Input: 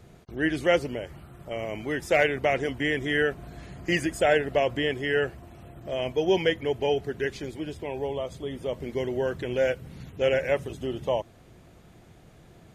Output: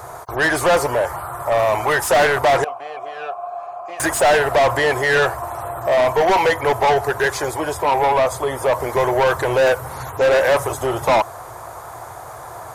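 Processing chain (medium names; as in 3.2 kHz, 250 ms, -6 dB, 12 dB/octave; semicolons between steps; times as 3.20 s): FFT filter 120 Hz 0 dB, 190 Hz -22 dB, 1 kHz +8 dB, 2.8 kHz -18 dB, 11 kHz +9 dB; overdrive pedal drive 31 dB, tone 3.7 kHz, clips at -9.5 dBFS; 2.64–4.00 s: vowel filter a; trim +2.5 dB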